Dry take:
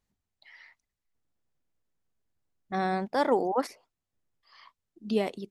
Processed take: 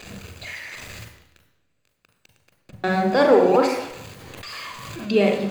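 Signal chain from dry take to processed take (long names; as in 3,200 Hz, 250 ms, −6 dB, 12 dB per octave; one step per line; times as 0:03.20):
converter with a step at zero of −39 dBFS
high-shelf EQ 5,300 Hz +4 dB
0:00.57–0:02.84: compressor whose output falls as the input rises −44 dBFS, ratio −0.5
convolution reverb RT60 0.85 s, pre-delay 37 ms, DRR 5 dB
0:03.54–0:05.08: background raised ahead of every attack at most 23 dB per second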